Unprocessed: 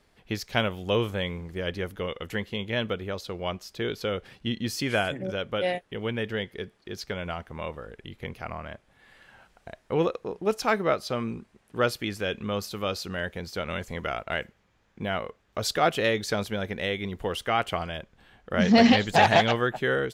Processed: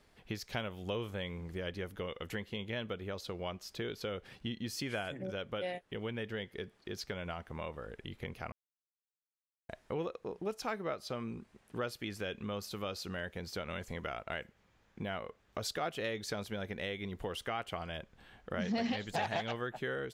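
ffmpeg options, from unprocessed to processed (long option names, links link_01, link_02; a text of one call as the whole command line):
ffmpeg -i in.wav -filter_complex "[0:a]asplit=3[link_01][link_02][link_03];[link_01]atrim=end=8.52,asetpts=PTS-STARTPTS,afade=type=out:start_time=8.516:duration=0.004:curve=hsin[link_04];[link_02]atrim=start=8.52:end=9.69,asetpts=PTS-STARTPTS,volume=0[link_05];[link_03]atrim=start=9.69,asetpts=PTS-STARTPTS,afade=type=in:duration=0.004:curve=hsin[link_06];[link_04][link_05][link_06]concat=n=3:v=0:a=1,acompressor=threshold=-37dB:ratio=2.5,volume=-2dB" out.wav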